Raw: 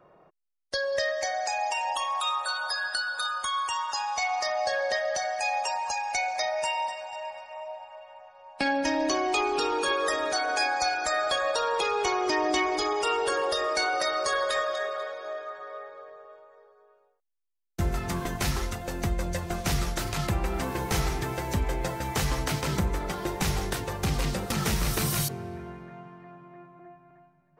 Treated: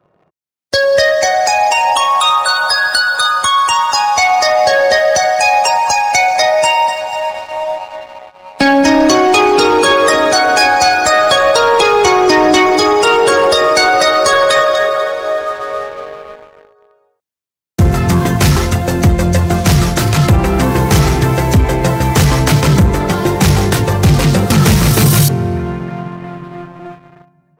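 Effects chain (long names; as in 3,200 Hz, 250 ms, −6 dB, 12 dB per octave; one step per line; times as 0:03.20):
high-pass filter 74 Hz 24 dB per octave
low-shelf EQ 230 Hz +10 dB
leveller curve on the samples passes 2
automatic gain control gain up to 11.5 dB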